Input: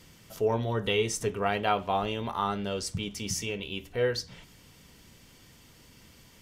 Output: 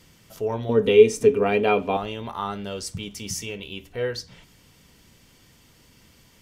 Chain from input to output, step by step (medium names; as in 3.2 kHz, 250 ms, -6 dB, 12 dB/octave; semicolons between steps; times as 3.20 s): 0.69–1.97 s: small resonant body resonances 260/430/2400 Hz, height 17 dB, ringing for 55 ms; 2.53–3.74 s: treble shelf 8.1 kHz +5 dB